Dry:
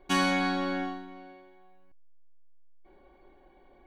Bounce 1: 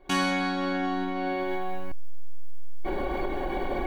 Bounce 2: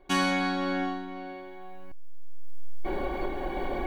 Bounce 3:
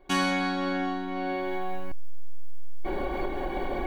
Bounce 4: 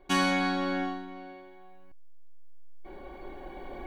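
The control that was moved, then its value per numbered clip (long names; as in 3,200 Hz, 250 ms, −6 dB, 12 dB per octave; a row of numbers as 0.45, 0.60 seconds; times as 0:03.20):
camcorder AGC, rising by: 86, 14, 34, 5.5 dB per second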